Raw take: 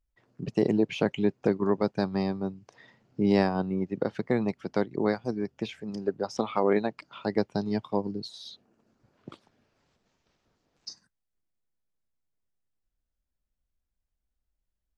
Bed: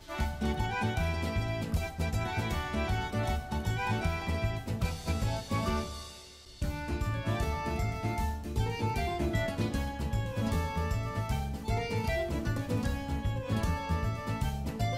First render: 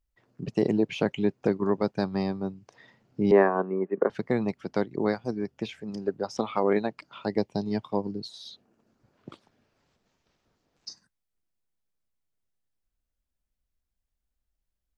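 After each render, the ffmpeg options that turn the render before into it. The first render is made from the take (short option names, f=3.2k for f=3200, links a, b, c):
-filter_complex "[0:a]asettb=1/sr,asplit=3[a][b][c];[a]atrim=end=3.314[d];[b]atrim=start=3.31:end=4.1,asetpts=PTS-STARTPTS,afade=t=in:d=0.004:c=qsin,afade=t=out:st=0.786:d=0.004:c=qsin,highpass=f=210:w=0.5412,highpass=f=210:w=1.3066,equalizer=f=260:t=q:w=4:g=-4,equalizer=f=410:t=q:w=4:g=9,equalizer=f=620:t=q:w=4:g=5,equalizer=f=1.1k:t=q:w=4:g=10,equalizer=f=1.7k:t=q:w=4:g=7,lowpass=f=2.2k:w=0.5412,lowpass=f=2.2k:w=1.3066[e];[c]atrim=start=4.096[f];[d][e]acrossfade=d=0.004:c1=hsin:c2=qsin[g];[g][f]acrossfade=d=0.004:c1=qsin:c2=hsin,asettb=1/sr,asplit=3[h][i][j];[h]atrim=end=7.284[k];[i]atrim=start=7.28:end=7.71,asetpts=PTS-STARTPTS,afade=t=in:d=0.004:c=qsin,afade=t=out:st=0.426:d=0.004:c=qsin,equalizer=f=1.4k:w=3.3:g=-12[l];[j]atrim=start=7.706[m];[k][l]acrossfade=d=0.004:c1=hsin:c2=qsin[n];[n][m]acrossfade=d=0.004:c1=qsin:c2=hsin"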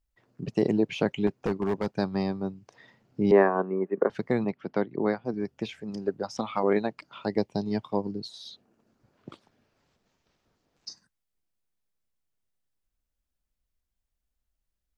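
-filter_complex "[0:a]asettb=1/sr,asplit=3[a][b][c];[a]atrim=end=1.274[d];[b]atrim=start=1.27:end=1.97,asetpts=PTS-STARTPTS,afade=t=in:d=0.004:c=qsin,afade=t=out:st=0.696:d=0.004:c=qsin,asoftclip=type=hard:threshold=-21.5dB[e];[c]atrim=start=1.966[f];[d][e]acrossfade=d=0.004:c1=hsin:c2=qsin[g];[g][f]acrossfade=d=0.004:c1=qsin:c2=hsin,asettb=1/sr,asplit=3[h][i][j];[h]atrim=end=4.444[k];[i]atrim=start=4.44:end=5.34,asetpts=PTS-STARTPTS,afade=t=in:d=0.004:c=qsin,afade=t=out:st=0.896:d=0.004:c=qsin,highpass=120,lowpass=3.1k[l];[j]atrim=start=5.336[m];[k][l]acrossfade=d=0.004:c1=hsin:c2=qsin[n];[n][m]acrossfade=d=0.004:c1=qsin:c2=hsin,asettb=1/sr,asplit=3[o][p][q];[o]atrim=end=6.224[r];[p]atrim=start=6.22:end=6.63,asetpts=PTS-STARTPTS,afade=t=in:d=0.004:c=qsin,afade=t=out:st=0.406:d=0.004:c=qsin,equalizer=f=410:w=2.8:g=-11[s];[q]atrim=start=6.626[t];[r][s]acrossfade=d=0.004:c1=hsin:c2=qsin[u];[u][t]acrossfade=d=0.004:c1=qsin:c2=hsin"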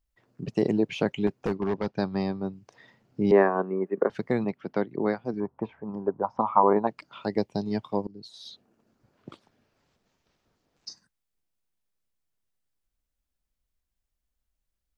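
-filter_complex "[0:a]asettb=1/sr,asplit=3[a][b][c];[a]atrim=end=1.564[d];[b]atrim=start=1.56:end=2.53,asetpts=PTS-STARTPTS,afade=t=in:d=0.004:c=qsin,afade=t=out:st=0.966:d=0.004:c=qsin,lowpass=f=5.6k:w=0.5412,lowpass=f=5.6k:w=1.3066[e];[c]atrim=start=2.526[f];[d][e]acrossfade=d=0.004:c1=hsin:c2=qsin[g];[g][f]acrossfade=d=0.004:c1=qsin:c2=hsin,asettb=1/sr,asplit=3[h][i][j];[h]atrim=end=5.404[k];[i]atrim=start=5.4:end=6.87,asetpts=PTS-STARTPTS,afade=t=in:d=0.004:c=qsin,afade=t=out:st=1.466:d=0.004:c=qsin,lowpass=f=990:t=q:w=5.5[l];[j]atrim=start=6.866[m];[k][l]acrossfade=d=0.004:c1=hsin:c2=qsin[n];[n][m]acrossfade=d=0.004:c1=qsin:c2=hsin,asplit=2[o][p];[o]atrim=end=8.07,asetpts=PTS-STARTPTS,afade=t=out:st=8.066:d=0.004:c=hsin:silence=0.0841395[q];[p]atrim=start=8.07,asetpts=PTS-STARTPTS,afade=t=in:d=0.4:silence=0.0841395[r];[q][r]concat=n=2:v=0:a=1"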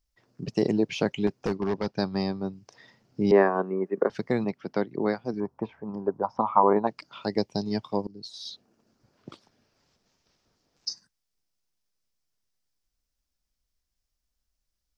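-af "equalizer=f=5.3k:t=o:w=0.68:g=9.5"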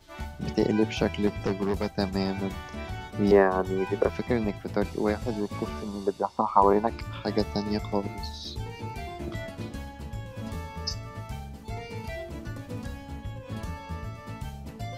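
-filter_complex "[1:a]volume=-5dB[a];[0:a][a]amix=inputs=2:normalize=0"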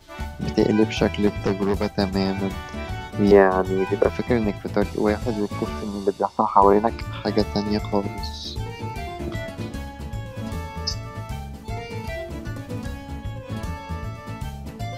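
-af "volume=5.5dB,alimiter=limit=-1dB:level=0:latency=1"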